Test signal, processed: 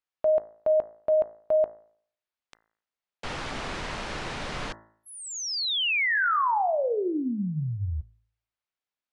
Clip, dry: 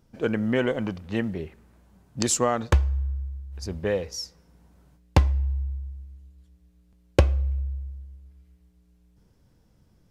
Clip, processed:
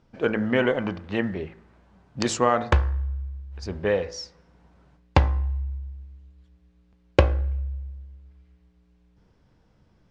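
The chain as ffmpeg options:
-af "lowpass=5k,equalizer=f=1.2k:w=0.38:g=6,bandreject=f=55.19:t=h:w=4,bandreject=f=110.38:t=h:w=4,bandreject=f=165.57:t=h:w=4,bandreject=f=220.76:t=h:w=4,bandreject=f=275.95:t=h:w=4,bandreject=f=331.14:t=h:w=4,bandreject=f=386.33:t=h:w=4,bandreject=f=441.52:t=h:w=4,bandreject=f=496.71:t=h:w=4,bandreject=f=551.9:t=h:w=4,bandreject=f=607.09:t=h:w=4,bandreject=f=662.28:t=h:w=4,bandreject=f=717.47:t=h:w=4,bandreject=f=772.66:t=h:w=4,bandreject=f=827.85:t=h:w=4,bandreject=f=883.04:t=h:w=4,bandreject=f=938.23:t=h:w=4,bandreject=f=993.42:t=h:w=4,bandreject=f=1.04861k:t=h:w=4,bandreject=f=1.1038k:t=h:w=4,bandreject=f=1.15899k:t=h:w=4,bandreject=f=1.21418k:t=h:w=4,bandreject=f=1.26937k:t=h:w=4,bandreject=f=1.32456k:t=h:w=4,bandreject=f=1.37975k:t=h:w=4,bandreject=f=1.43494k:t=h:w=4,bandreject=f=1.49013k:t=h:w=4,bandreject=f=1.54532k:t=h:w=4,bandreject=f=1.60051k:t=h:w=4,bandreject=f=1.6557k:t=h:w=4,bandreject=f=1.71089k:t=h:w=4,bandreject=f=1.76608k:t=h:w=4,bandreject=f=1.82127k:t=h:w=4,bandreject=f=1.87646k:t=h:w=4,bandreject=f=1.93165k:t=h:w=4,bandreject=f=1.98684k:t=h:w=4,bandreject=f=2.04203k:t=h:w=4" -ar 24000 -c:a libmp3lame -b:a 128k

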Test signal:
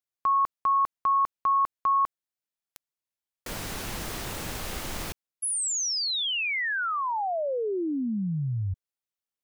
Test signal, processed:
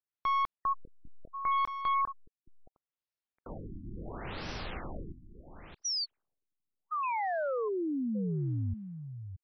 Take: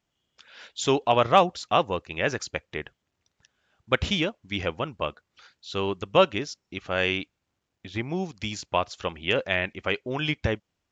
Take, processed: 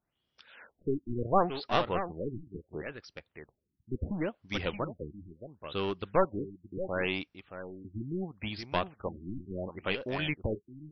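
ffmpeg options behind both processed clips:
-af "aeval=exprs='clip(val(0),-1,0.0531)':c=same,aecho=1:1:623:0.316,afftfilt=real='re*lt(b*sr/1024,340*pow(6100/340,0.5+0.5*sin(2*PI*0.72*pts/sr)))':imag='im*lt(b*sr/1024,340*pow(6100/340,0.5+0.5*sin(2*PI*0.72*pts/sr)))':win_size=1024:overlap=0.75,volume=-4dB"

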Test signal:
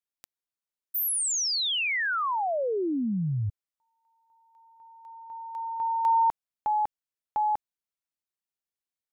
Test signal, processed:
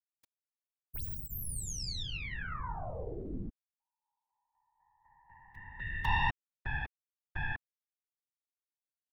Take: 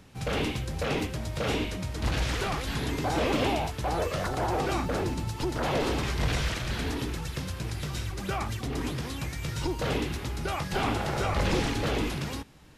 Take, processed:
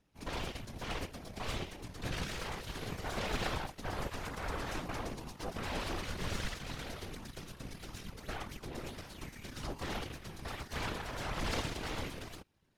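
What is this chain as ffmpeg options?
-af "bandreject=f=7.6k:w=9.4,aeval=exprs='0.188*(cos(1*acos(clip(val(0)/0.188,-1,1)))-cos(1*PI/2))+0.0668*(cos(3*acos(clip(val(0)/0.188,-1,1)))-cos(3*PI/2))+0.0335*(cos(4*acos(clip(val(0)/0.188,-1,1)))-cos(4*PI/2))+0.00168*(cos(7*acos(clip(val(0)/0.188,-1,1)))-cos(7*PI/2))+0.00376*(cos(8*acos(clip(val(0)/0.188,-1,1)))-cos(8*PI/2))':c=same,afftfilt=real='hypot(re,im)*cos(2*PI*random(0))':imag='hypot(re,im)*sin(2*PI*random(1))':win_size=512:overlap=0.75,volume=3dB"

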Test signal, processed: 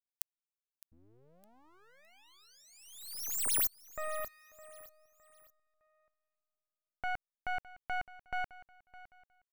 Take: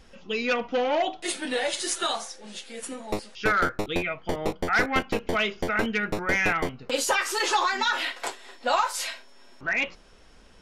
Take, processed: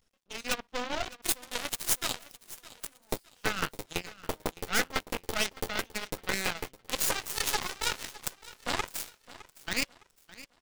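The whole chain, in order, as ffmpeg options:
-filter_complex "[0:a]aeval=exprs='max(val(0),0)':c=same,alimiter=limit=-16dB:level=0:latency=1:release=483,aemphasis=mode=production:type=50kf,aeval=exprs='0.355*(cos(1*acos(clip(val(0)/0.355,-1,1)))-cos(1*PI/2))+0.0708*(cos(2*acos(clip(val(0)/0.355,-1,1)))-cos(2*PI/2))+0.00355*(cos(4*acos(clip(val(0)/0.355,-1,1)))-cos(4*PI/2))+0.0562*(cos(7*acos(clip(val(0)/0.355,-1,1)))-cos(7*PI/2))+0.00355*(cos(8*acos(clip(val(0)/0.355,-1,1)))-cos(8*PI/2))':c=same,asplit=2[a][b];[b]aecho=0:1:611|1222|1833:0.126|0.0441|0.0154[c];[a][c]amix=inputs=2:normalize=0"

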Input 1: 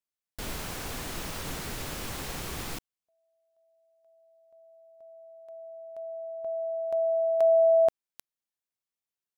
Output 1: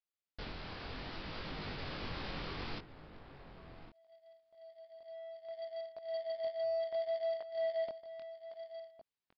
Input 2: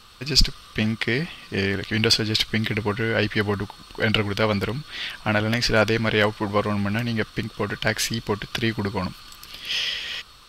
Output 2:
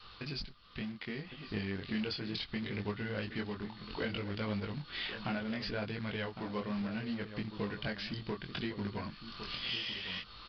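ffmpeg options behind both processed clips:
-filter_complex "[0:a]adynamicequalizer=threshold=0.0158:dfrequency=220:dqfactor=1.3:tfrequency=220:tqfactor=1.3:attack=5:release=100:ratio=0.438:range=2.5:mode=boostabove:tftype=bell,acompressor=threshold=-38dB:ratio=5:attack=44:release=543:knee=1:detection=peak,asplit=2[a][b];[b]adelay=1108,volume=-11dB,highshelf=f=4k:g=-24.9[c];[a][c]amix=inputs=2:normalize=0,asoftclip=type=tanh:threshold=-26dB,flanger=delay=19:depth=5.4:speed=0.67,dynaudnorm=f=390:g=7:m=4dB,acrusher=bits=3:mode=log:mix=0:aa=0.000001,aresample=11025,aresample=44100,volume=-1dB"

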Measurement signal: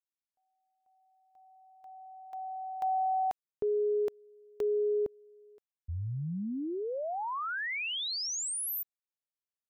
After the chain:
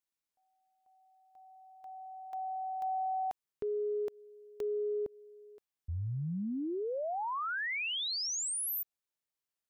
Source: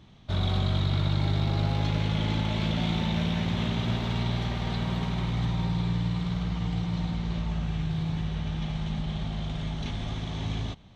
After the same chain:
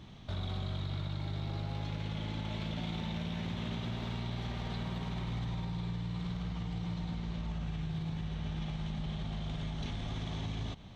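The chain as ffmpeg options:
-af "acompressor=threshold=-35dB:ratio=5:attack=0.23:release=128:knee=6:detection=rms,volume=2.5dB"

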